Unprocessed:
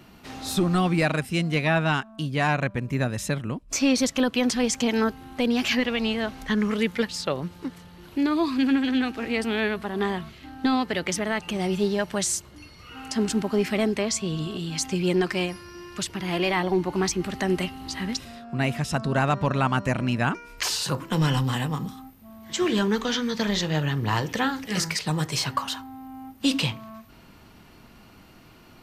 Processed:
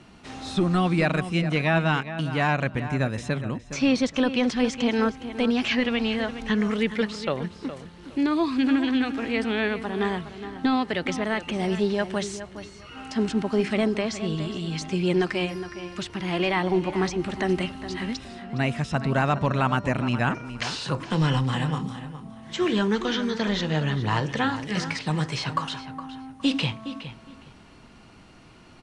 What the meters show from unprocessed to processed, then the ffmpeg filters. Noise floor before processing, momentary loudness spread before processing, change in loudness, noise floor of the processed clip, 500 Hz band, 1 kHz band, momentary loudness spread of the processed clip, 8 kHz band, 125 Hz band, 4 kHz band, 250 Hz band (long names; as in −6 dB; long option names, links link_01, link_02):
−51 dBFS, 9 LU, 0.0 dB, −49 dBFS, +0.5 dB, +0.5 dB, 12 LU, −10.5 dB, +0.5 dB, −2.0 dB, +0.5 dB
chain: -filter_complex "[0:a]acrossover=split=4500[link_01][link_02];[link_02]acompressor=threshold=-46dB:ratio=4:attack=1:release=60[link_03];[link_01][link_03]amix=inputs=2:normalize=0,aresample=22050,aresample=44100,bandreject=frequency=4700:width=29,asplit=2[link_04][link_05];[link_05]adelay=414,lowpass=frequency=3700:poles=1,volume=-11.5dB,asplit=2[link_06][link_07];[link_07]adelay=414,lowpass=frequency=3700:poles=1,volume=0.23,asplit=2[link_08][link_09];[link_09]adelay=414,lowpass=frequency=3700:poles=1,volume=0.23[link_10];[link_04][link_06][link_08][link_10]amix=inputs=4:normalize=0"